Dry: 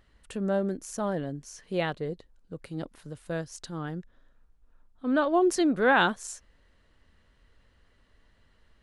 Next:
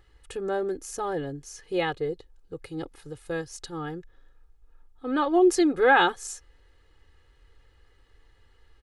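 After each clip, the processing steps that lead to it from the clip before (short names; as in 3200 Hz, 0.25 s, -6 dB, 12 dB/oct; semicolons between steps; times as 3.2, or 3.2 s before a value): comb 2.4 ms, depth 87%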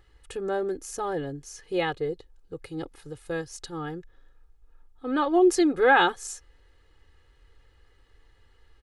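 nothing audible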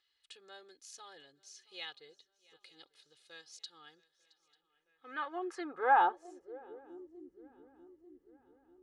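swung echo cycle 0.893 s, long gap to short 3:1, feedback 50%, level -23 dB; band-pass sweep 4000 Hz -> 290 Hz, 4.43–7.12; gain -2.5 dB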